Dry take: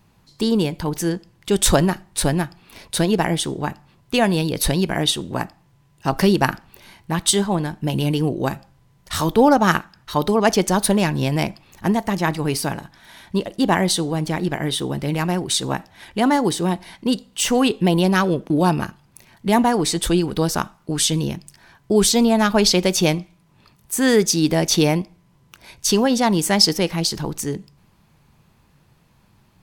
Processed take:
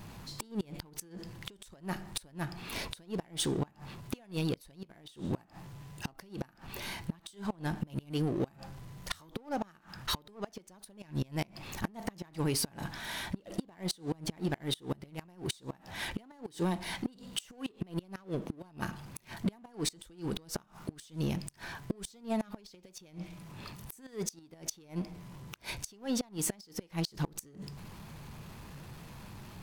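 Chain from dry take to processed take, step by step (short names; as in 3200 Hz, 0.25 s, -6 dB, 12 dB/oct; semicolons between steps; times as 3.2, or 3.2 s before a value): compressor 20:1, threshold -27 dBFS, peak gain reduction 19.5 dB; flipped gate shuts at -21 dBFS, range -38 dB; power-law curve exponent 0.7; gain -2 dB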